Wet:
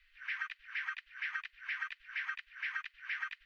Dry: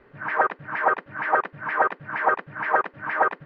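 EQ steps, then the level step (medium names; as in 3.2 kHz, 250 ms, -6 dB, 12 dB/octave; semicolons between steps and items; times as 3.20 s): inverse Chebyshev band-stop 130–670 Hz, stop band 70 dB; +2.5 dB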